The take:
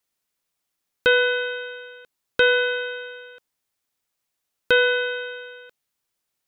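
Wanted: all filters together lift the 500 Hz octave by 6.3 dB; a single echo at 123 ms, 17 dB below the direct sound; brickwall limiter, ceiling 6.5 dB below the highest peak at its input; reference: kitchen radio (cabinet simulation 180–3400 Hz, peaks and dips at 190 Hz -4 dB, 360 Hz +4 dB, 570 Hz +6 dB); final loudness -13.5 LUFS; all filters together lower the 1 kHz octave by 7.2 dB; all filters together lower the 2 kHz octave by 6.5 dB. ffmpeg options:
-af "equalizer=f=500:t=o:g=5,equalizer=f=1000:t=o:g=-7.5,equalizer=f=2000:t=o:g=-6.5,alimiter=limit=0.2:level=0:latency=1,highpass=180,equalizer=f=190:t=q:w=4:g=-4,equalizer=f=360:t=q:w=4:g=4,equalizer=f=570:t=q:w=4:g=6,lowpass=f=3400:w=0.5412,lowpass=f=3400:w=1.3066,aecho=1:1:123:0.141,volume=2.99"

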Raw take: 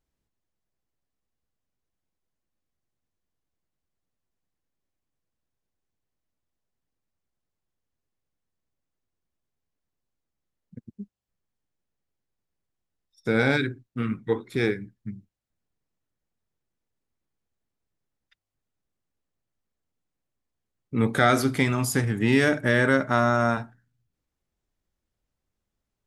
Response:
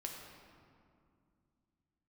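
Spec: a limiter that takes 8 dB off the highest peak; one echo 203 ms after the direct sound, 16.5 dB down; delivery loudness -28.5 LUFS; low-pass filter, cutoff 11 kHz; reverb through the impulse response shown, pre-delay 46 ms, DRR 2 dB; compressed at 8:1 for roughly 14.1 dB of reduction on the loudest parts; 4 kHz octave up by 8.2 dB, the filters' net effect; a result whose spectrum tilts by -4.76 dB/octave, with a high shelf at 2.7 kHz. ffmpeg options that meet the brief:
-filter_complex "[0:a]lowpass=11000,highshelf=f=2700:g=3,equalizer=f=4000:t=o:g=7.5,acompressor=threshold=0.0355:ratio=8,alimiter=limit=0.0668:level=0:latency=1,aecho=1:1:203:0.15,asplit=2[s0][s1];[1:a]atrim=start_sample=2205,adelay=46[s2];[s1][s2]afir=irnorm=-1:irlink=0,volume=0.944[s3];[s0][s3]amix=inputs=2:normalize=0,volume=2.11"

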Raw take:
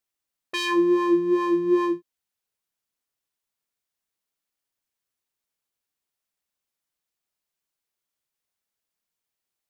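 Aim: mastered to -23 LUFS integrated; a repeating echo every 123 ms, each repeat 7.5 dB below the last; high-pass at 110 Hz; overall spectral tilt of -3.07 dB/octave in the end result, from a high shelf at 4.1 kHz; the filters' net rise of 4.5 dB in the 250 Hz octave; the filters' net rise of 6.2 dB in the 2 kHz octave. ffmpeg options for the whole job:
-af "highpass=110,equalizer=f=250:t=o:g=8.5,equalizer=f=2000:t=o:g=6.5,highshelf=f=4100:g=4,aecho=1:1:123|246|369|492|615:0.422|0.177|0.0744|0.0312|0.0131,volume=0.501"

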